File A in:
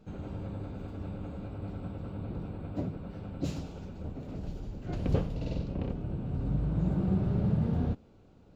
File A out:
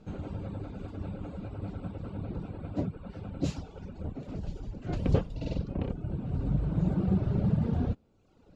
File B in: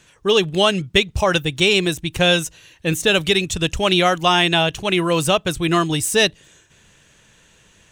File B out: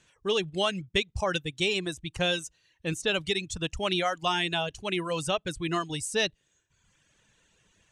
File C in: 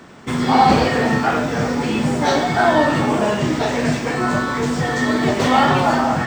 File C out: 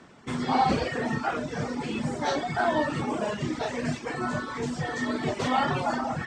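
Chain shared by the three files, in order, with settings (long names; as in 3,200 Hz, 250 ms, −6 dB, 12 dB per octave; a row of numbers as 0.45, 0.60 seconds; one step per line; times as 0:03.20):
low-pass filter 10,000 Hz 24 dB per octave
reverb reduction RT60 0.95 s
normalise the peak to −12 dBFS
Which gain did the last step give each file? +3.5, −10.5, −9.0 decibels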